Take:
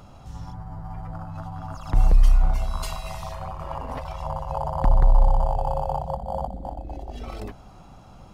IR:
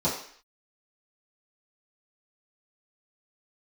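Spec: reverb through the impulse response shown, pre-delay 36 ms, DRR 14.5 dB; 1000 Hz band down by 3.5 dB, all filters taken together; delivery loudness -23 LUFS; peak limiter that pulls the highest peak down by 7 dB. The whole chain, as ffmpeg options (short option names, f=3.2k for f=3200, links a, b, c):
-filter_complex "[0:a]equalizer=f=1k:t=o:g=-4.5,alimiter=limit=-13.5dB:level=0:latency=1,asplit=2[a][b];[1:a]atrim=start_sample=2205,adelay=36[c];[b][c]afir=irnorm=-1:irlink=0,volume=-26dB[d];[a][d]amix=inputs=2:normalize=0,volume=7.5dB"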